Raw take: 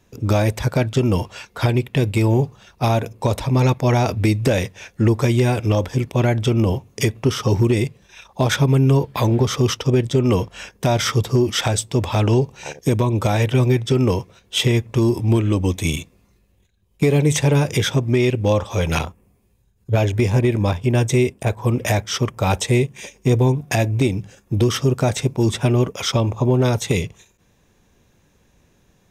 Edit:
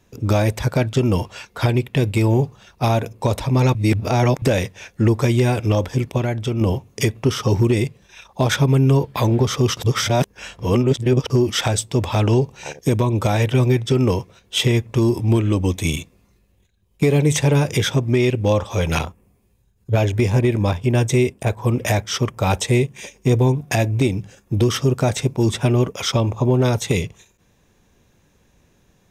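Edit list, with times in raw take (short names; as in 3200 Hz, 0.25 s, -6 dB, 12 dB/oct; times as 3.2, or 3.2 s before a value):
3.75–4.42 reverse
6.18–6.61 gain -4.5 dB
9.77–11.3 reverse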